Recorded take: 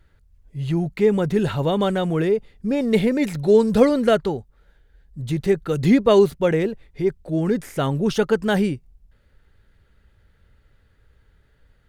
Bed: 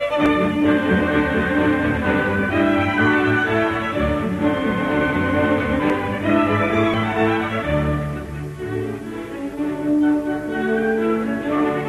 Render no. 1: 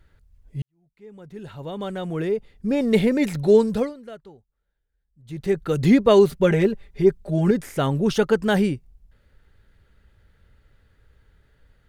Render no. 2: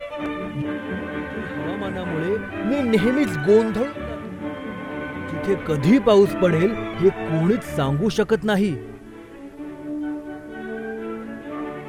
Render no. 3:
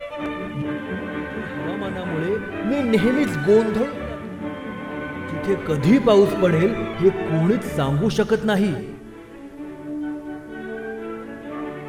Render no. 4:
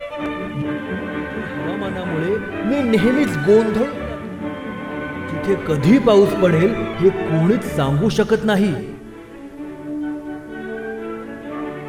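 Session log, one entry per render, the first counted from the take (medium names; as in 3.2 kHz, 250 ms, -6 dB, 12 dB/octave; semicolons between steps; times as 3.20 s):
0.62–2.76 s: fade in quadratic; 3.54–5.64 s: dip -22 dB, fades 0.40 s; 6.29–7.51 s: comb 5 ms, depth 77%
add bed -11 dB
gated-style reverb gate 270 ms flat, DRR 11 dB
trim +3 dB; peak limiter -3 dBFS, peak gain reduction 2 dB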